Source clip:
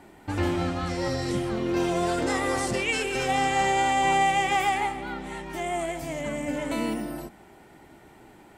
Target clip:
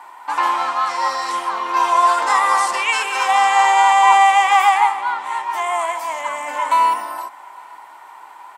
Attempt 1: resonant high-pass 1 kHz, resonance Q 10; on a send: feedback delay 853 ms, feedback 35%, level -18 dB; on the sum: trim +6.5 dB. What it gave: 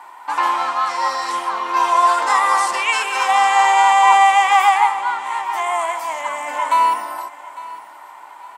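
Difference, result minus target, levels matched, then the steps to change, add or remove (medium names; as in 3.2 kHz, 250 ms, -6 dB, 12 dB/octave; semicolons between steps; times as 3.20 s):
echo-to-direct +10.5 dB
change: feedback delay 853 ms, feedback 35%, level -28.5 dB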